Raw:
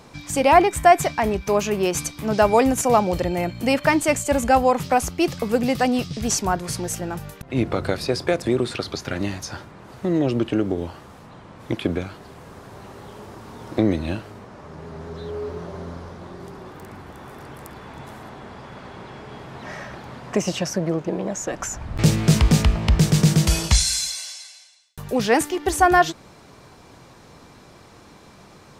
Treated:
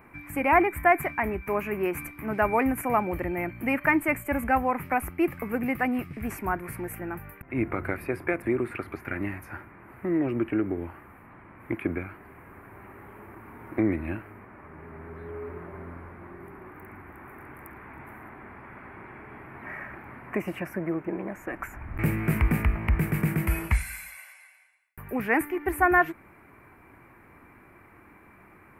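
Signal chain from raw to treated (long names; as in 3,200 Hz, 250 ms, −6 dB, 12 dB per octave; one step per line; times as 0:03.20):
drawn EQ curve 100 Hz 0 dB, 150 Hz −5 dB, 340 Hz +3 dB, 490 Hz −6 dB, 1,000 Hz +1 dB, 2,300 Hz +7 dB, 3,500 Hz −24 dB, 6,300 Hz −27 dB, 12,000 Hz +4 dB
level −6 dB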